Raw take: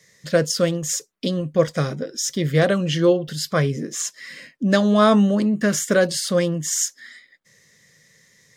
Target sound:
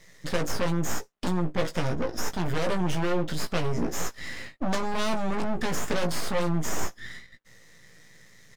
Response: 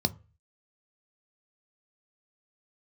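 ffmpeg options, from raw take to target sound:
-filter_complex "[0:a]aeval=exprs='max(val(0),0)':c=same,acrossover=split=2200|5100[s0][s1][s2];[s0]acompressor=threshold=0.112:ratio=4[s3];[s1]acompressor=threshold=0.00562:ratio=4[s4];[s2]acompressor=threshold=0.0141:ratio=4[s5];[s3][s4][s5]amix=inputs=3:normalize=0,highshelf=f=3700:g=-7.5,asplit=2[s6][s7];[s7]aeval=exprs='0.355*sin(PI/2*5.62*val(0)/0.355)':c=same,volume=0.282[s8];[s6][s8]amix=inputs=2:normalize=0,asplit=2[s9][s10];[s10]adelay=17,volume=0.501[s11];[s9][s11]amix=inputs=2:normalize=0,volume=0.596"

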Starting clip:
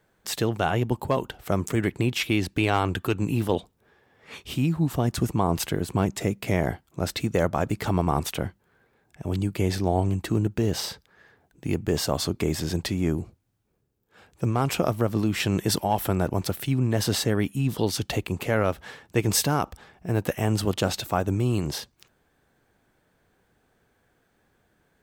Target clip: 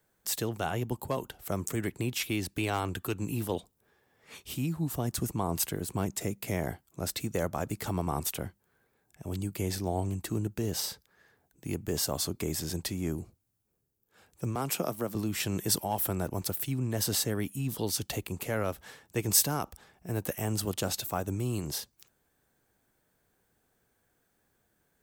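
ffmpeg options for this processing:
-filter_complex "[0:a]asettb=1/sr,asplit=3[s0][s1][s2];[s0]atrim=end=14.554[s3];[s1]atrim=start=14.55:end=15.15,asetpts=PTS-STARTPTS,afade=t=in:d=0.004:c=qsin,afade=t=out:st=0.596:d=0.004:c=qsin,highpass=f=140:w=0.5412,highpass=f=140:w=1.3066[s4];[s2]atrim=start=15.146[s5];[s3][s4]acrossfade=d=0.004:c1=hsin:c2=qsin[s6];[s6][s5]acrossfade=d=0.004:c1=qsin:c2=hsin,acrossover=split=300|1100|3700[s7][s8][s9][s10];[s10]crystalizer=i=2:c=0[s11];[s7][s8][s9][s11]amix=inputs=4:normalize=0,volume=0.398"

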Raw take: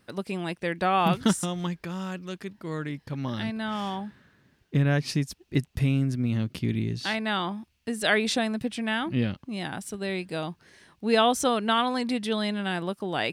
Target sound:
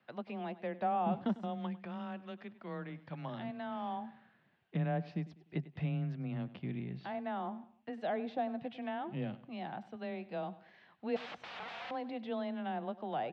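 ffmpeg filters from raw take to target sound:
-filter_complex "[0:a]asettb=1/sr,asplit=3[s0][s1][s2];[s0]atrim=end=6.164[s3];[s1]atrim=start=6.16:end=7.93,asetpts=PTS-STARTPTS,afade=t=in:d=0.004:c=qsin,afade=t=out:st=1.766:d=0.004:c=qsin,highshelf=f=2500:g=-10.5[s4];[s2]atrim=start=7.926[s5];[s3][s4]acrossfade=d=0.004:c1=hsin:c2=qsin[s6];[s6][s5]acrossfade=d=0.004:c1=qsin:c2=hsin,acrossover=split=600|810[s7][s8][s9];[s8]alimiter=level_in=2.99:limit=0.0631:level=0:latency=1,volume=0.335[s10];[s9]acompressor=threshold=0.00708:ratio=6[s11];[s7][s10][s11]amix=inputs=3:normalize=0,afreqshift=16,asettb=1/sr,asplit=3[s12][s13][s14];[s12]atrim=end=11.164[s15];[s13]atrim=start=11.16:end=11.91,asetpts=PTS-STARTPTS,afade=t=in:d=0.004:c=qsin,afade=t=out:st=0.746:d=0.004:c=qsin,aeval=exprs='(mod(39.8*val(0)+1,2)-1)/39.8':c=same[s16];[s14]atrim=start=11.906[s17];[s15][s16]acrossfade=d=0.004:c1=hsin:c2=qsin[s18];[s18][s17]acrossfade=d=0.004:c1=qsin:c2=hsin,highpass=170,equalizer=f=280:t=q:w=4:g=-10,equalizer=f=420:t=q:w=4:g=-7,equalizer=f=740:t=q:w=4:g=7,lowpass=f=3400:w=0.5412,lowpass=f=3400:w=1.3066,aecho=1:1:99|198|297:0.133|0.052|0.0203,volume=0.473"

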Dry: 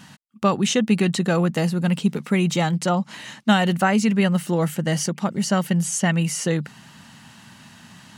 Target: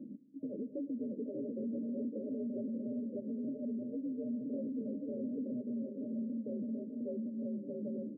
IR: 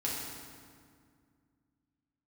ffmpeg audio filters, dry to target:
-filter_complex "[0:a]aecho=1:1:590|973.5|1223|1385|1490:0.631|0.398|0.251|0.158|0.1,acompressor=threshold=0.0251:ratio=6,flanger=delay=3.9:depth=5.3:regen=-32:speed=1.1:shape=triangular,afreqshift=59,asoftclip=type=tanh:threshold=0.01,asplit=2[s0][s1];[1:a]atrim=start_sample=2205,adelay=106[s2];[s1][s2]afir=irnorm=-1:irlink=0,volume=0.0841[s3];[s0][s3]amix=inputs=2:normalize=0,afftfilt=real='re*between(b*sr/4096,110,620)':imag='im*between(b*sr/4096,110,620)':win_size=4096:overlap=0.75,volume=1.88"

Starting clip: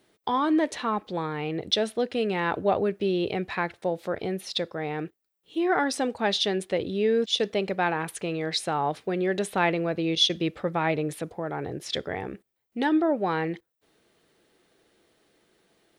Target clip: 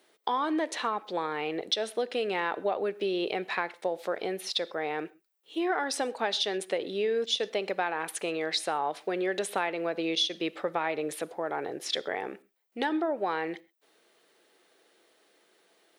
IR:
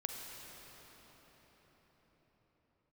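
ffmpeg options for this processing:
-filter_complex "[0:a]highpass=400,acompressor=threshold=0.0447:ratio=6,asplit=2[s0][s1];[1:a]atrim=start_sample=2205,atrim=end_sample=6174[s2];[s1][s2]afir=irnorm=-1:irlink=0,volume=0.299[s3];[s0][s3]amix=inputs=2:normalize=0"

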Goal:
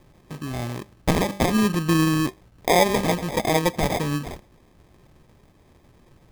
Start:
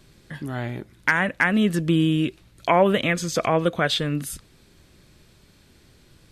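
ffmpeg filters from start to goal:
-af "bandreject=f=196.5:t=h:w=4,bandreject=f=393:t=h:w=4,bandreject=f=589.5:t=h:w=4,bandreject=f=786:t=h:w=4,bandreject=f=982.5:t=h:w=4,bandreject=f=1179:t=h:w=4,bandreject=f=1375.5:t=h:w=4,bandreject=f=1572:t=h:w=4,bandreject=f=1768.5:t=h:w=4,bandreject=f=1965:t=h:w=4,bandreject=f=2161.5:t=h:w=4,bandreject=f=2358:t=h:w=4,bandreject=f=2554.5:t=h:w=4,bandreject=f=2751:t=h:w=4,bandreject=f=2947.5:t=h:w=4,bandreject=f=3144:t=h:w=4,bandreject=f=3340.5:t=h:w=4,bandreject=f=3537:t=h:w=4,bandreject=f=3733.5:t=h:w=4,bandreject=f=3930:t=h:w=4,bandreject=f=4126.5:t=h:w=4,bandreject=f=4323:t=h:w=4,bandreject=f=4519.5:t=h:w=4,bandreject=f=4716:t=h:w=4,bandreject=f=4912.5:t=h:w=4,bandreject=f=5109:t=h:w=4,bandreject=f=5305.5:t=h:w=4,bandreject=f=5502:t=h:w=4,bandreject=f=5698.5:t=h:w=4,bandreject=f=5895:t=h:w=4,bandreject=f=6091.5:t=h:w=4,bandreject=f=6288:t=h:w=4,bandreject=f=6484.5:t=h:w=4,bandreject=f=6681:t=h:w=4,bandreject=f=6877.5:t=h:w=4,bandreject=f=7074:t=h:w=4,bandreject=f=7270.5:t=h:w=4,bandreject=f=7467:t=h:w=4,bandreject=f=7663.5:t=h:w=4,acrusher=samples=31:mix=1:aa=0.000001"

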